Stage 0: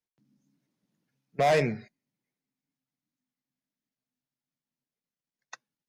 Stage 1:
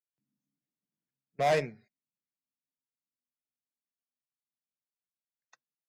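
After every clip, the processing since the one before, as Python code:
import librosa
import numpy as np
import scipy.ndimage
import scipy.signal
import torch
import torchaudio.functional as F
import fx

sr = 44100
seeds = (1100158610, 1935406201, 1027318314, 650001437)

y = fx.upward_expand(x, sr, threshold_db=-31.0, expansion=2.5)
y = y * librosa.db_to_amplitude(-2.0)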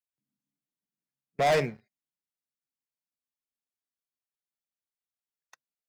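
y = fx.leveller(x, sr, passes=2)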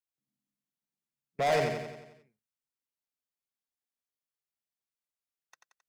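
y = fx.echo_feedback(x, sr, ms=89, feedback_pct=55, wet_db=-5.0)
y = y * librosa.db_to_amplitude(-4.0)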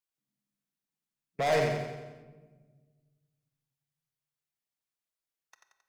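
y = fx.room_shoebox(x, sr, seeds[0], volume_m3=1300.0, walls='mixed', distance_m=0.62)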